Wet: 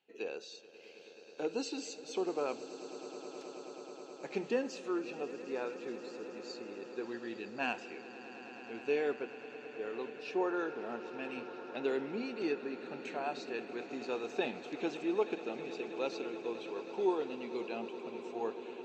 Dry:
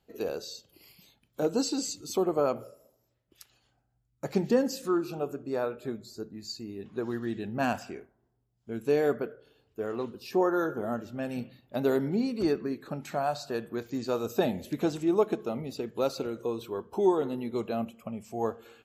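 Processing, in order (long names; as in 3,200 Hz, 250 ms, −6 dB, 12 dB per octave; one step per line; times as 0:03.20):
loudspeaker in its box 370–5,900 Hz, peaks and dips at 620 Hz −9 dB, 1,200 Hz −7 dB, 2,600 Hz +9 dB, 4,900 Hz −8 dB
echo that builds up and dies away 107 ms, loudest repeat 8, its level −18 dB
level −4 dB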